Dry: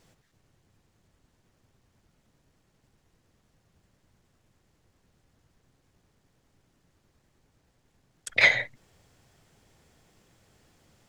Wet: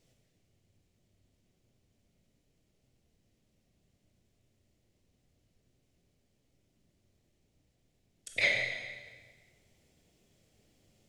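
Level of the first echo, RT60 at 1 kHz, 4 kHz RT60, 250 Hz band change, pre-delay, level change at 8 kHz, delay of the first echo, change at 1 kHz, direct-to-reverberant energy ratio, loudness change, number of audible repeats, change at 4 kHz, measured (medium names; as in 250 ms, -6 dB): no echo, 1.5 s, 1.4 s, -4.5 dB, 16 ms, -5.5 dB, no echo, -12.0 dB, 1.0 dB, -8.5 dB, no echo, -6.0 dB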